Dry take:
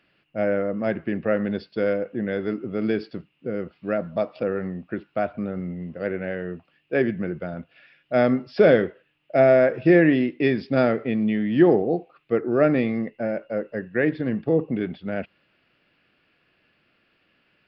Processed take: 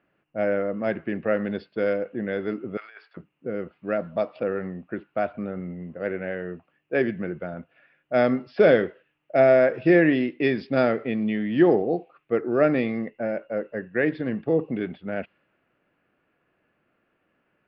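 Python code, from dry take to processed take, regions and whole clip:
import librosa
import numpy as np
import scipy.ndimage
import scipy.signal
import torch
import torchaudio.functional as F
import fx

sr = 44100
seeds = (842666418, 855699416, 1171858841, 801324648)

y = fx.chain(x, sr, fx.highpass(hz=970.0, slope=24),
    fx.over_compress(threshold_db=-40.0, ratio=-0.5), at=(2.77, 3.17))
y = fx.low_shelf(y, sr, hz=230.0, db=-5.5)
y = fx.env_lowpass(y, sr, base_hz=1300.0, full_db=-17.0)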